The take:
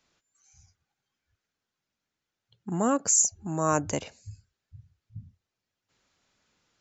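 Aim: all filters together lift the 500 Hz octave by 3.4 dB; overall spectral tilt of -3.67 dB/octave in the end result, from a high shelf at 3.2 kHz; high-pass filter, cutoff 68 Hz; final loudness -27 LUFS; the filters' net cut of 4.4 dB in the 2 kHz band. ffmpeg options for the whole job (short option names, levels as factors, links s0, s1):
-af "highpass=68,equalizer=f=500:t=o:g=4.5,equalizer=f=2000:t=o:g=-8,highshelf=f=3200:g=3.5,volume=0.668"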